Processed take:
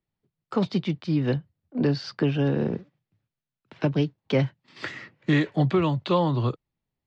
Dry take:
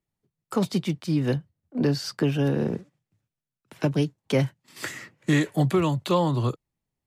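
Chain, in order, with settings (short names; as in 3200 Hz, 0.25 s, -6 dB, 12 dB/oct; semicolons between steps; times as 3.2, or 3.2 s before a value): LPF 4600 Hz 24 dB/oct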